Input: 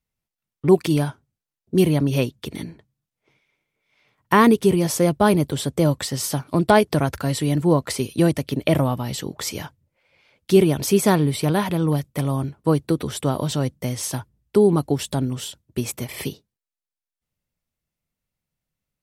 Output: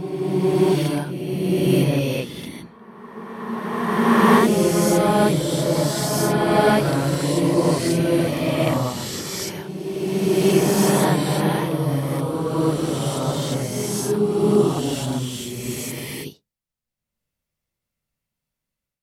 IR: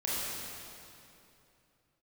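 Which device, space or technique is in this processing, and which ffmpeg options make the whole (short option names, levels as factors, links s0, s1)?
reverse reverb: -filter_complex "[0:a]lowshelf=f=480:g=-3.5,areverse[s0];[1:a]atrim=start_sample=2205[s1];[s0][s1]afir=irnorm=-1:irlink=0,areverse,volume=0.596"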